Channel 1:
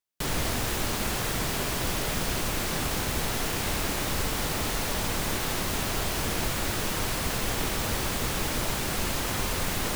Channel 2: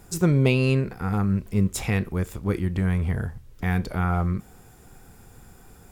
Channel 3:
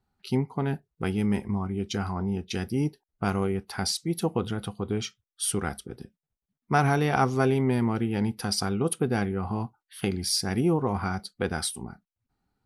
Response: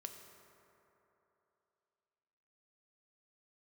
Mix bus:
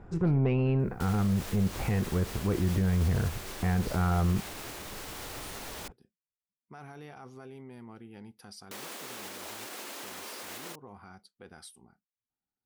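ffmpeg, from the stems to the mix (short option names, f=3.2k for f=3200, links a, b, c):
-filter_complex "[0:a]highpass=f=260:w=0.5412,highpass=f=260:w=1.3066,acompressor=mode=upward:threshold=-48dB:ratio=2.5,adelay=800,volume=-7dB,asplit=3[a][b][c];[a]atrim=end=5.88,asetpts=PTS-STARTPTS,afade=t=out:st=5.876:d=0.004:c=hsin[d];[b]atrim=start=5.88:end=8.71,asetpts=PTS-STARTPTS,volume=0[e];[c]atrim=start=8.71,asetpts=PTS-STARTPTS,afade=t=in:d=0.004:c=hsin[f];[d][e][f]concat=n=3:v=0:a=1[g];[1:a]lowpass=1.5k,asoftclip=type=tanh:threshold=-15dB,volume=1dB[h];[2:a]alimiter=limit=-19dB:level=0:latency=1:release=27,volume=-18.5dB[i];[g][i]amix=inputs=2:normalize=0,lowshelf=f=120:g=-8.5,alimiter=level_in=8dB:limit=-24dB:level=0:latency=1:release=134,volume=-8dB,volume=0dB[j];[h][j]amix=inputs=2:normalize=0,alimiter=limit=-19.5dB:level=0:latency=1:release=30"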